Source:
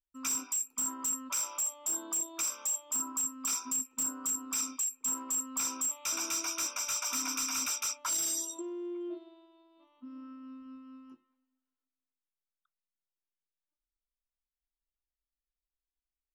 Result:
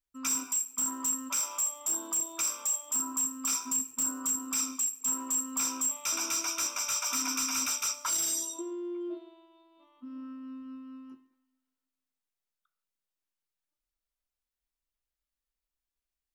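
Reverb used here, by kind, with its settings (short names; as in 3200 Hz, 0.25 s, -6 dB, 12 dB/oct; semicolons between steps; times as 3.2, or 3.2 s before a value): non-linear reverb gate 0.21 s falling, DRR 11 dB; gain +2 dB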